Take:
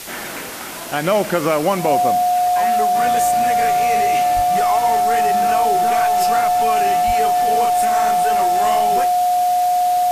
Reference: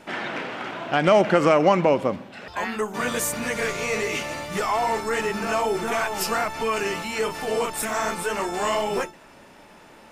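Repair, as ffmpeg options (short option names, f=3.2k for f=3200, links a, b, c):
-filter_complex "[0:a]adeclick=t=4,bandreject=f=720:w=30,asplit=3[a][b][c];[a]afade=t=out:st=4.35:d=0.02[d];[b]highpass=f=140:w=0.5412,highpass=f=140:w=1.3066,afade=t=in:st=4.35:d=0.02,afade=t=out:st=4.47:d=0.02[e];[c]afade=t=in:st=4.47:d=0.02[f];[d][e][f]amix=inputs=3:normalize=0,asplit=3[g][h][i];[g]afade=t=out:st=7.06:d=0.02[j];[h]highpass=f=140:w=0.5412,highpass=f=140:w=1.3066,afade=t=in:st=7.06:d=0.02,afade=t=out:st=7.18:d=0.02[k];[i]afade=t=in:st=7.18:d=0.02[l];[j][k][l]amix=inputs=3:normalize=0,afwtdn=0.025"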